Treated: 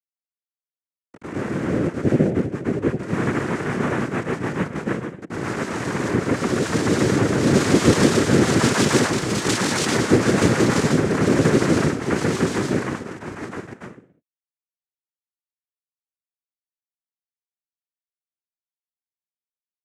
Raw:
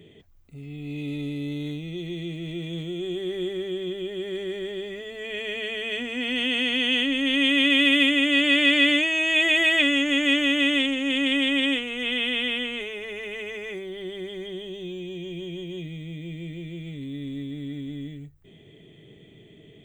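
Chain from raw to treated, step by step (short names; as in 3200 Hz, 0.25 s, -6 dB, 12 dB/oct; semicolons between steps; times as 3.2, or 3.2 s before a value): level-crossing sampler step -23 dBFS; reverb RT60 0.45 s, pre-delay 93 ms, DRR -11 dB; noise vocoder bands 3; gain -13.5 dB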